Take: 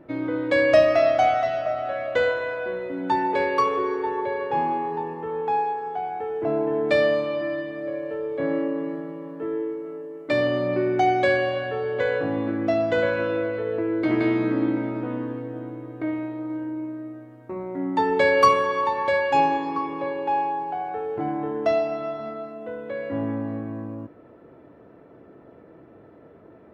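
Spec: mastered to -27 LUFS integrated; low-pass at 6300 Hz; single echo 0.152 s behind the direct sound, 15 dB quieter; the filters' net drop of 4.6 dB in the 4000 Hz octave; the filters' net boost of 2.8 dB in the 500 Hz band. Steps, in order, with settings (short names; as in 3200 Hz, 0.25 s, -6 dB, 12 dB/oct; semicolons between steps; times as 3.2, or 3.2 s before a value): LPF 6300 Hz; bell 500 Hz +3.5 dB; bell 4000 Hz -6 dB; echo 0.152 s -15 dB; gain -4.5 dB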